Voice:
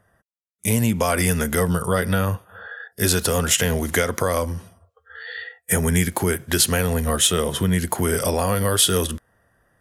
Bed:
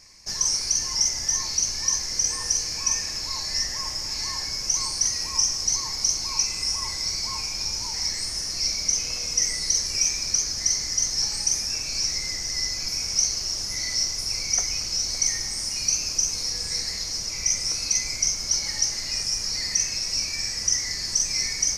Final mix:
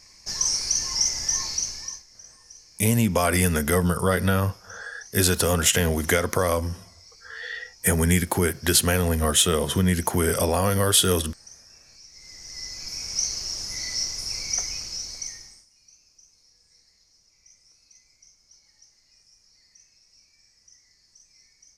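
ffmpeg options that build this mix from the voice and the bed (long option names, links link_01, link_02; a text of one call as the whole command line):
ffmpeg -i stem1.wav -i stem2.wav -filter_complex "[0:a]adelay=2150,volume=-1dB[link_01];[1:a]volume=20dB,afade=type=out:start_time=1.42:duration=0.62:silence=0.0707946,afade=type=in:start_time=12.11:duration=1.21:silence=0.0944061,afade=type=out:start_time=14.56:duration=1.1:silence=0.0354813[link_02];[link_01][link_02]amix=inputs=2:normalize=0" out.wav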